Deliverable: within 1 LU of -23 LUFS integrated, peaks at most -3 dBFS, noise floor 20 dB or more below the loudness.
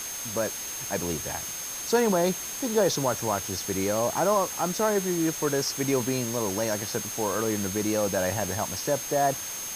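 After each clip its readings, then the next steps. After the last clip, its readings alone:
steady tone 6.4 kHz; tone level -35 dBFS; noise floor -35 dBFS; noise floor target -47 dBFS; loudness -26.5 LUFS; peak level -11.0 dBFS; loudness target -23.0 LUFS
-> band-stop 6.4 kHz, Q 30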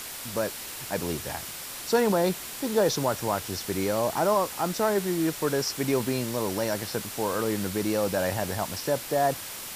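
steady tone not found; noise floor -38 dBFS; noise floor target -48 dBFS
-> noise reduction 10 dB, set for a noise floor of -38 dBFS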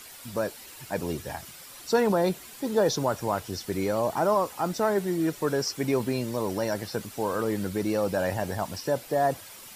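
noise floor -46 dBFS; noise floor target -48 dBFS
-> noise reduction 6 dB, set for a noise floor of -46 dBFS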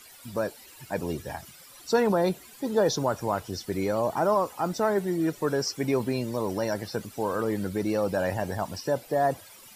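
noise floor -50 dBFS; loudness -28.0 LUFS; peak level -12.0 dBFS; loudness target -23.0 LUFS
-> trim +5 dB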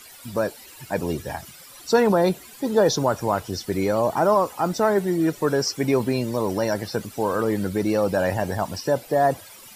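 loudness -23.0 LUFS; peak level -7.0 dBFS; noise floor -45 dBFS

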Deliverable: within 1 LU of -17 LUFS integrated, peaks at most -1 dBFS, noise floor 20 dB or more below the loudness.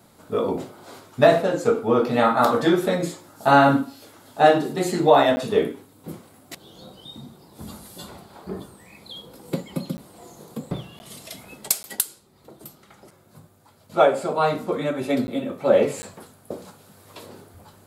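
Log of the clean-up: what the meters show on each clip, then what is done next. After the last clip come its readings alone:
dropouts 6; longest dropout 10 ms; loudness -21.0 LUFS; peak level -2.0 dBFS; loudness target -17.0 LUFS
-> interpolate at 5.36/9.97/10.99/11.83/15.27/16.02 s, 10 ms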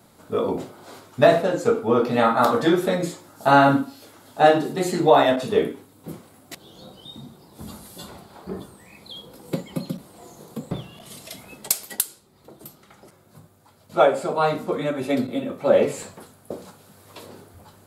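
dropouts 0; loudness -21.0 LUFS; peak level -2.0 dBFS; loudness target -17.0 LUFS
-> trim +4 dB; peak limiter -1 dBFS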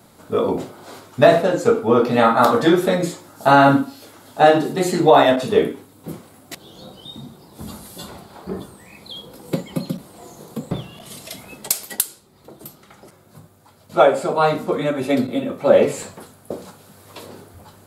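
loudness -17.5 LUFS; peak level -1.0 dBFS; noise floor -51 dBFS

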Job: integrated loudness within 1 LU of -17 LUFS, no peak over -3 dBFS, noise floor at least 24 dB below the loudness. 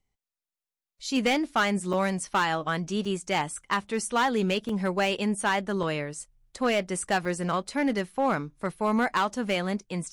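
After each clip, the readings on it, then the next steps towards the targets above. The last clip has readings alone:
clipped samples 0.9%; clipping level -18.0 dBFS; dropouts 5; longest dropout 3.6 ms; loudness -27.5 LUFS; peak level -18.0 dBFS; loudness target -17.0 LUFS
-> clip repair -18 dBFS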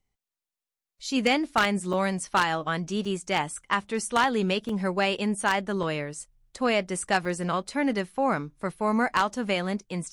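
clipped samples 0.0%; dropouts 5; longest dropout 3.6 ms
-> interpolate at 1.93/3.05/4.69/5.83/7.25 s, 3.6 ms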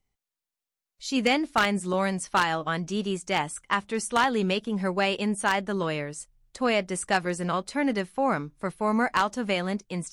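dropouts 0; loudness -27.0 LUFS; peak level -9.0 dBFS; loudness target -17.0 LUFS
-> trim +10 dB; peak limiter -3 dBFS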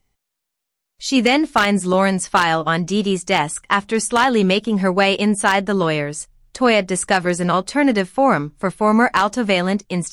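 loudness -17.5 LUFS; peak level -3.0 dBFS; noise floor -79 dBFS

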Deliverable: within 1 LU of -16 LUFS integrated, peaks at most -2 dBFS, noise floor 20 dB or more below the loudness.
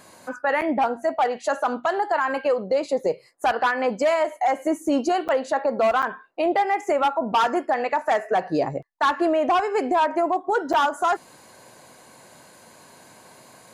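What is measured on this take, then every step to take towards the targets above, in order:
dropouts 4; longest dropout 7.8 ms; loudness -23.0 LUFS; peak level -13.5 dBFS; loudness target -16.0 LUFS
-> interpolate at 0.61/5.28/6.02/10.73 s, 7.8 ms; trim +7 dB

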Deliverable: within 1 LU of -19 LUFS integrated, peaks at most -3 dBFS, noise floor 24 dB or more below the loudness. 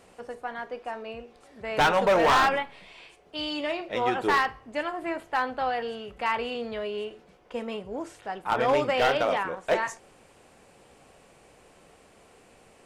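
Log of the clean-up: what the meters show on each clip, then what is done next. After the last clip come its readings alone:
clipped samples 1.0%; clipping level -17.0 dBFS; loudness -27.0 LUFS; peak level -17.0 dBFS; loudness target -19.0 LUFS
-> clip repair -17 dBFS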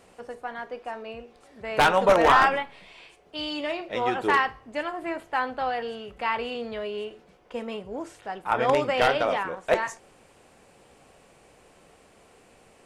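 clipped samples 0.0%; loudness -25.5 LUFS; peak level -8.0 dBFS; loudness target -19.0 LUFS
-> trim +6.5 dB; peak limiter -3 dBFS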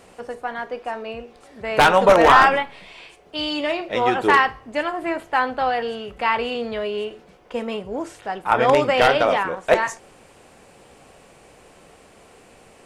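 loudness -19.5 LUFS; peak level -3.0 dBFS; noise floor -50 dBFS

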